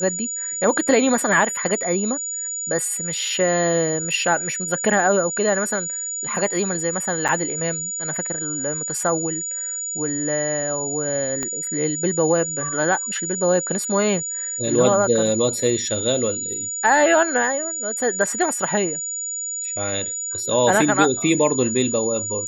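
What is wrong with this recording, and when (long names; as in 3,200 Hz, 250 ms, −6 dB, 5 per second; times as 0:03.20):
whistle 6,900 Hz −25 dBFS
0:07.28–0:07.29: drop-out 7.1 ms
0:11.43: click −12 dBFS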